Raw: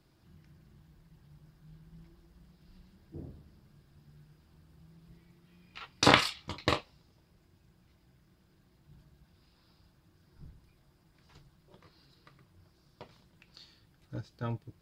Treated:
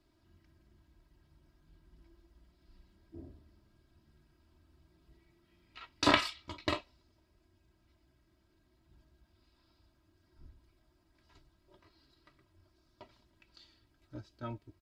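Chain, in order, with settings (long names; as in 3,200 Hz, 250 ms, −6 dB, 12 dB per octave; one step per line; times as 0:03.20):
high-shelf EQ 9,600 Hz −7.5 dB
comb filter 3.1 ms, depth 76%
level −6 dB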